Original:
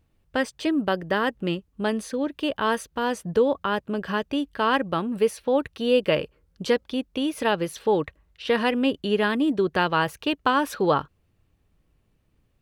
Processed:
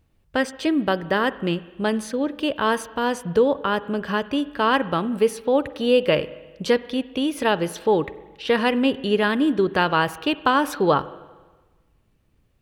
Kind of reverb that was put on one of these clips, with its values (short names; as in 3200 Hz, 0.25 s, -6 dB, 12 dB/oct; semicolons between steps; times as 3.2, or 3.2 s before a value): spring tank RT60 1.3 s, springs 41/46/58 ms, chirp 60 ms, DRR 16 dB; gain +2.5 dB